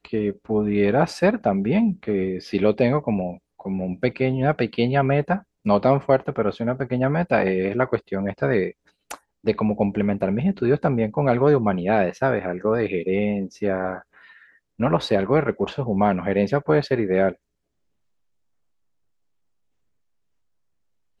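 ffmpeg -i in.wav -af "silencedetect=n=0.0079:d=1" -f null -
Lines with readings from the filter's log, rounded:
silence_start: 17.34
silence_end: 21.20 | silence_duration: 3.86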